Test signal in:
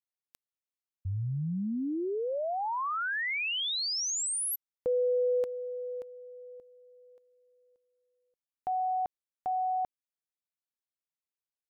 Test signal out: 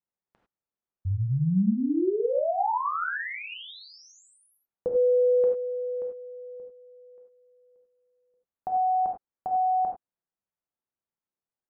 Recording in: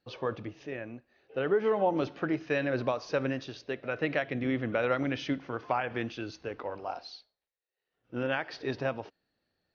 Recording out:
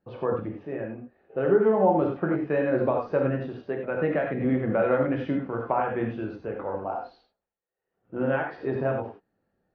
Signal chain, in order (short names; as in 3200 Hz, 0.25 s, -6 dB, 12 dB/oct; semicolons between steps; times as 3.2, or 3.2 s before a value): LPF 1200 Hz 12 dB/oct; bell 190 Hz +2 dB 0.43 oct; non-linear reverb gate 0.12 s flat, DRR 0.5 dB; gain +4 dB